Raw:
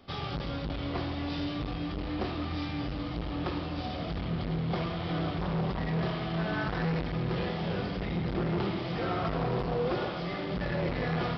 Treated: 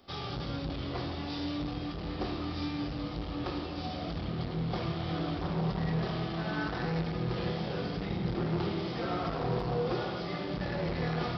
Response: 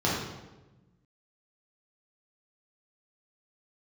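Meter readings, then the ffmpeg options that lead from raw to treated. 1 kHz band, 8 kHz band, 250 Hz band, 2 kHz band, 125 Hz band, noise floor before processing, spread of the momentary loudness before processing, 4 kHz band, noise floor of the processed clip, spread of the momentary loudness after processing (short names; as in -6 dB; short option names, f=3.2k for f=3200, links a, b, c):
-2.0 dB, n/a, -1.5 dB, -3.0 dB, -1.5 dB, -36 dBFS, 5 LU, -0.5 dB, -38 dBFS, 5 LU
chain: -filter_complex "[0:a]highshelf=f=4k:g=9.5,asplit=2[a][b];[1:a]atrim=start_sample=2205[c];[b][c]afir=irnorm=-1:irlink=0,volume=-18dB[d];[a][d]amix=inputs=2:normalize=0,volume=-5.5dB"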